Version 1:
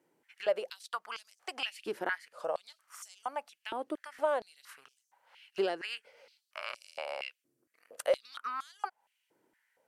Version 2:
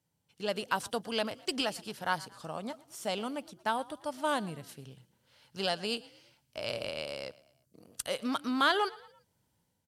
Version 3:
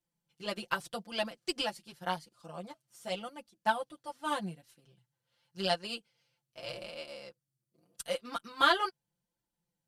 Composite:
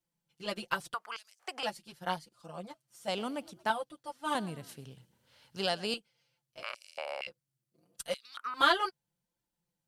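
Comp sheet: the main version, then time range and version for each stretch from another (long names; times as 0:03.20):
3
0:00.94–0:01.63: punch in from 1
0:03.08–0:03.70: punch in from 2
0:04.35–0:05.94: punch in from 2
0:06.63–0:07.27: punch in from 1
0:08.14–0:08.54: punch in from 1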